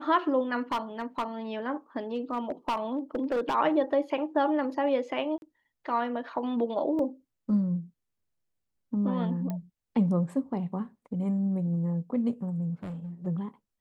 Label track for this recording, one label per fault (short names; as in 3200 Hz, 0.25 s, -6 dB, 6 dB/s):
0.720000	1.240000	clipped -25 dBFS
2.140000	3.550000	clipped -24 dBFS
5.380000	5.420000	gap 41 ms
6.990000	6.990000	gap 2.6 ms
9.500000	9.500000	pop -22 dBFS
12.830000	13.270000	clipped -34 dBFS